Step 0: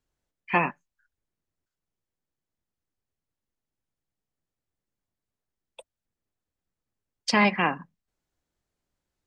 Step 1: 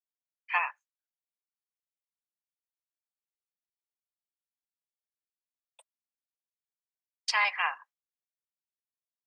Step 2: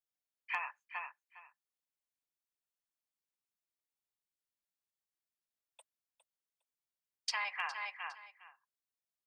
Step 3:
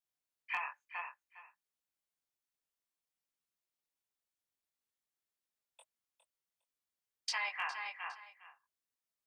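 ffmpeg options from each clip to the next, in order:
-af "agate=range=0.0224:threshold=0.00708:ratio=3:detection=peak,highpass=f=910:w=0.5412,highpass=f=910:w=1.3066,volume=0.75"
-af "aecho=1:1:408|816:0.251|0.0427,acompressor=threshold=0.0282:ratio=12,asoftclip=type=hard:threshold=0.0891,volume=0.794"
-af "flanger=delay=19.5:depth=3.6:speed=0.55,volume=1.41"

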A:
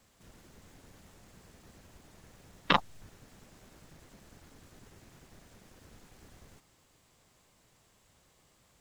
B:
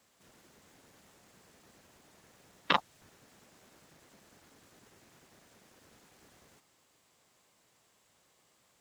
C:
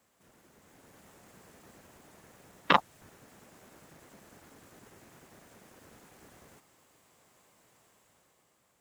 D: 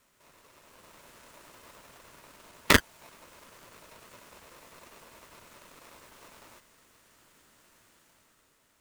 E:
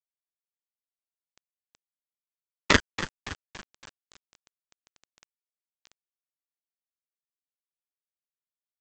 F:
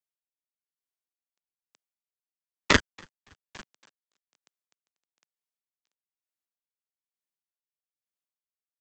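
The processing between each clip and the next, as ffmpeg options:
-af "highpass=f=300:p=1,volume=0.841"
-af "equalizer=f=4300:t=o:w=1.6:g=-6.5,dynaudnorm=f=180:g=9:m=2.11"
-af "aeval=exprs='val(0)*sgn(sin(2*PI*780*n/s))':c=same,volume=1.41"
-filter_complex "[0:a]asplit=6[s0][s1][s2][s3][s4][s5];[s1]adelay=282,afreqshift=-82,volume=0.237[s6];[s2]adelay=564,afreqshift=-164,volume=0.116[s7];[s3]adelay=846,afreqshift=-246,volume=0.0569[s8];[s4]adelay=1128,afreqshift=-328,volume=0.0279[s9];[s5]adelay=1410,afreqshift=-410,volume=0.0136[s10];[s0][s6][s7][s8][s9][s10]amix=inputs=6:normalize=0,aresample=16000,acrusher=bits=6:mix=0:aa=0.000001,aresample=44100"
-filter_complex "[0:a]acrossover=split=140[s0][s1];[s0]aeval=exprs='val(0)*gte(abs(val(0)),0.00355)':c=same[s2];[s2][s1]amix=inputs=2:normalize=0,aeval=exprs='val(0)*pow(10,-24*(0.5-0.5*cos(2*PI*1.1*n/s))/20)':c=same"

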